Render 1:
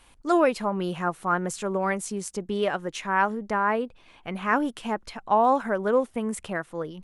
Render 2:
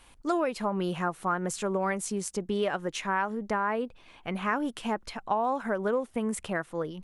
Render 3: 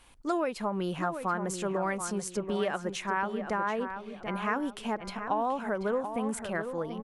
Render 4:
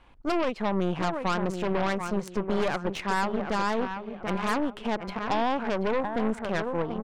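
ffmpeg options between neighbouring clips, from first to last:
ffmpeg -i in.wav -af "acompressor=threshold=-24dB:ratio=6" out.wav
ffmpeg -i in.wav -filter_complex "[0:a]asplit=2[link_01][link_02];[link_02]adelay=734,lowpass=frequency=2700:poles=1,volume=-8dB,asplit=2[link_03][link_04];[link_04]adelay=734,lowpass=frequency=2700:poles=1,volume=0.35,asplit=2[link_05][link_06];[link_06]adelay=734,lowpass=frequency=2700:poles=1,volume=0.35,asplit=2[link_07][link_08];[link_08]adelay=734,lowpass=frequency=2700:poles=1,volume=0.35[link_09];[link_01][link_03][link_05][link_07][link_09]amix=inputs=5:normalize=0,volume=-2dB" out.wav
ffmpeg -i in.wav -af "adynamicsmooth=sensitivity=4:basefreq=2500,aeval=exprs='0.15*(cos(1*acos(clip(val(0)/0.15,-1,1)))-cos(1*PI/2))+0.0188*(cos(5*acos(clip(val(0)/0.15,-1,1)))-cos(5*PI/2))+0.0266*(cos(8*acos(clip(val(0)/0.15,-1,1)))-cos(8*PI/2))':channel_layout=same" out.wav

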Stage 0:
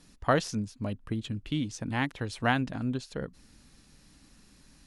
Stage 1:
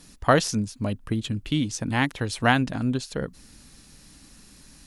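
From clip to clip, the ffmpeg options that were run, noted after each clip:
ffmpeg -i in.wav -af "highshelf=frequency=6200:gain=7.5,volume=6dB" out.wav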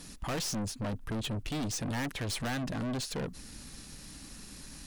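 ffmpeg -i in.wav -af "alimiter=limit=-10.5dB:level=0:latency=1:release=348,aeval=exprs='(tanh(63.1*val(0)+0.3)-tanh(0.3))/63.1':channel_layout=same,volume=4dB" out.wav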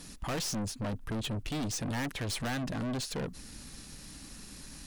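ffmpeg -i in.wav -af anull out.wav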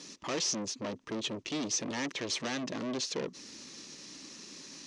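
ffmpeg -i in.wav -af "highpass=290,equalizer=frequency=360:width_type=q:width=4:gain=5,equalizer=frequency=760:width_type=q:width=4:gain=-7,equalizer=frequency=1500:width_type=q:width=4:gain=-7,equalizer=frequency=6100:width_type=q:width=4:gain=7,lowpass=frequency=6400:width=0.5412,lowpass=frequency=6400:width=1.3066,volume=2.5dB" out.wav

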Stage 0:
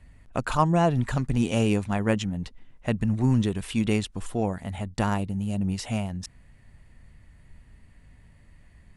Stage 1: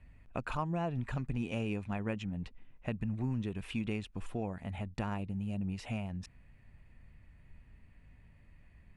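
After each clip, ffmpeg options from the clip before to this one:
ffmpeg -i in.wav -af "equalizer=frequency=2500:width=7.1:gain=8,acompressor=threshold=-28dB:ratio=2.5,bass=frequency=250:gain=1,treble=frequency=4000:gain=-10,volume=-6.5dB" out.wav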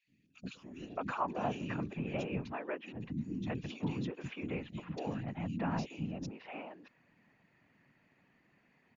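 ffmpeg -i in.wav -filter_complex "[0:a]afftfilt=real='re*between(b*sr/4096,180,7100)':imag='im*between(b*sr/4096,180,7100)':win_size=4096:overlap=0.75,afftfilt=real='hypot(re,im)*cos(2*PI*random(0))':imag='hypot(re,im)*sin(2*PI*random(1))':win_size=512:overlap=0.75,acrossover=split=320|2800[link_01][link_02][link_03];[link_01]adelay=80[link_04];[link_02]adelay=620[link_05];[link_04][link_05][link_03]amix=inputs=3:normalize=0,volume=8dB" out.wav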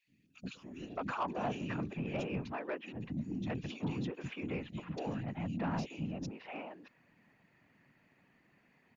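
ffmpeg -i in.wav -af "asoftclip=type=tanh:threshold=-28.5dB,volume=1dB" out.wav

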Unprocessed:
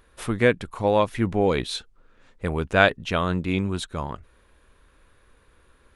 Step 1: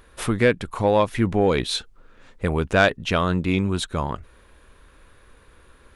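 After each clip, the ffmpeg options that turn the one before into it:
ffmpeg -i in.wav -filter_complex "[0:a]asplit=2[link_01][link_02];[link_02]acompressor=threshold=-27dB:ratio=6,volume=0dB[link_03];[link_01][link_03]amix=inputs=2:normalize=0,asoftclip=type=tanh:threshold=-5dB" out.wav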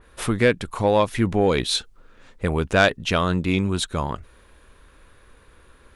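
ffmpeg -i in.wav -af "adynamicequalizer=threshold=0.02:dfrequency=3200:dqfactor=0.7:tfrequency=3200:tqfactor=0.7:attack=5:release=100:ratio=0.375:range=2:mode=boostabove:tftype=highshelf" out.wav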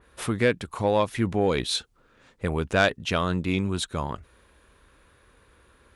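ffmpeg -i in.wav -af "highpass=46,volume=-4dB" out.wav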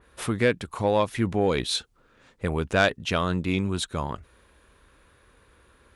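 ffmpeg -i in.wav -af anull out.wav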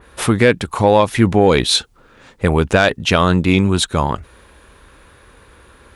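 ffmpeg -i in.wav -af "equalizer=frequency=840:width=6.4:gain=3,alimiter=level_in=13dB:limit=-1dB:release=50:level=0:latency=1,volume=-1dB" out.wav

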